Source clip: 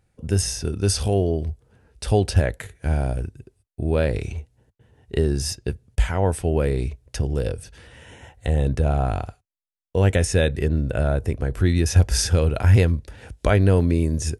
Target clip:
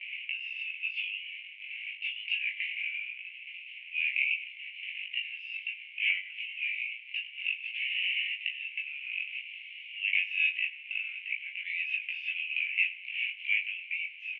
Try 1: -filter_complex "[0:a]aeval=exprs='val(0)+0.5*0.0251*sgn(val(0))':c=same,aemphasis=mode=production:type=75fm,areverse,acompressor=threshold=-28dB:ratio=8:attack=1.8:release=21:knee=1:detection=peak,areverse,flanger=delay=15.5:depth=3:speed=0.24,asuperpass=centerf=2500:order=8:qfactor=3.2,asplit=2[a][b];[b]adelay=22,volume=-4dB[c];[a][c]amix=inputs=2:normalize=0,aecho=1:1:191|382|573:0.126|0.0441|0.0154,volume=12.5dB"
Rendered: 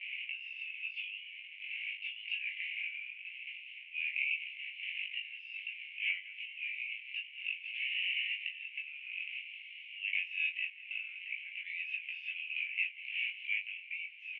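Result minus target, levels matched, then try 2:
echo 89 ms late; compressor: peak gain reduction +6.5 dB
-filter_complex "[0:a]aeval=exprs='val(0)+0.5*0.0251*sgn(val(0))':c=same,aemphasis=mode=production:type=75fm,areverse,acompressor=threshold=-20.5dB:ratio=8:attack=1.8:release=21:knee=1:detection=peak,areverse,flanger=delay=15.5:depth=3:speed=0.24,asuperpass=centerf=2500:order=8:qfactor=3.2,asplit=2[a][b];[b]adelay=22,volume=-4dB[c];[a][c]amix=inputs=2:normalize=0,aecho=1:1:102|204|306:0.126|0.0441|0.0154,volume=12.5dB"

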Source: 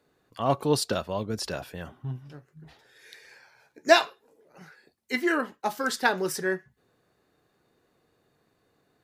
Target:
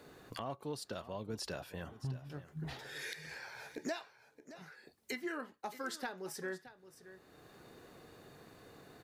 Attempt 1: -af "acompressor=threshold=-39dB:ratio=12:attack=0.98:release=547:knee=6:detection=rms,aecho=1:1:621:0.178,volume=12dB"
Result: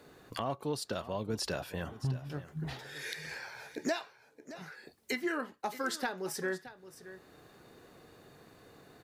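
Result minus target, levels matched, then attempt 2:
compressor: peak gain reduction -6.5 dB
-af "acompressor=threshold=-46dB:ratio=12:attack=0.98:release=547:knee=6:detection=rms,aecho=1:1:621:0.178,volume=12dB"

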